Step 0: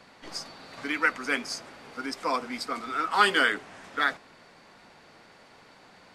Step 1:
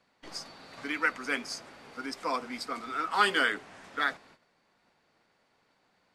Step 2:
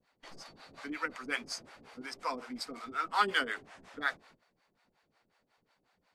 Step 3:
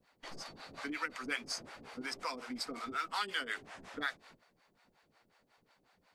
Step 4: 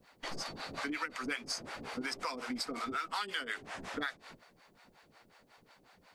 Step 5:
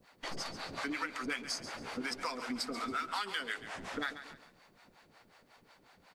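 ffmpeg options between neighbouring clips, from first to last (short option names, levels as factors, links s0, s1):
-af "agate=range=0.224:threshold=0.00282:ratio=16:detection=peak,volume=0.668"
-filter_complex "[0:a]lowshelf=f=67:g=7,acrossover=split=500[s0][s1];[s0]aeval=exprs='val(0)*(1-1/2+1/2*cos(2*PI*5.5*n/s))':c=same[s2];[s1]aeval=exprs='val(0)*(1-1/2-1/2*cos(2*PI*5.5*n/s))':c=same[s3];[s2][s3]amix=inputs=2:normalize=0"
-filter_complex "[0:a]acrossover=split=2000[s0][s1];[s0]acompressor=threshold=0.00794:ratio=6[s2];[s1]alimiter=level_in=2.11:limit=0.0631:level=0:latency=1:release=181,volume=0.473[s3];[s2][s3]amix=inputs=2:normalize=0,volume=1.5"
-af "acompressor=threshold=0.00631:ratio=3,volume=2.51"
-af "asoftclip=type=hard:threshold=0.0562,aecho=1:1:138|276|414:0.251|0.0829|0.0274"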